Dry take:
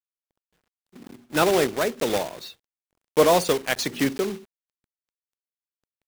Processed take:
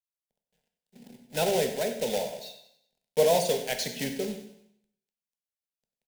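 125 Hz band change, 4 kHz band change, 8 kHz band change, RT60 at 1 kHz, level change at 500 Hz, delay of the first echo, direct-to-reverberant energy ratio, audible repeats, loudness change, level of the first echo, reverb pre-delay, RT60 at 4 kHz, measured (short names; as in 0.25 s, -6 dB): -5.0 dB, -4.0 dB, -3.0 dB, 0.75 s, -4.0 dB, 95 ms, 5.0 dB, 4, -5.0 dB, -13.5 dB, 7 ms, 0.75 s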